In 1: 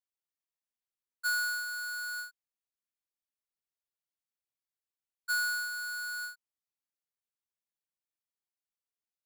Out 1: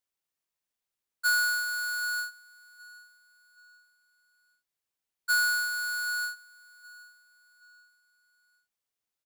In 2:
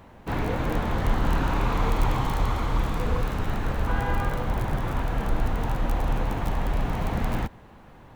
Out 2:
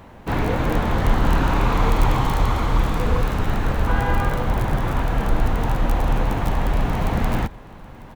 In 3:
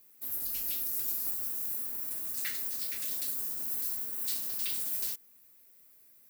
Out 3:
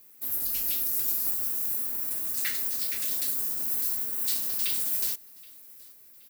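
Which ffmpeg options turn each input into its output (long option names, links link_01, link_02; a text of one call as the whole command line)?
ffmpeg -i in.wav -af "aecho=1:1:774|1548|2322:0.0668|0.0287|0.0124,volume=5.5dB" out.wav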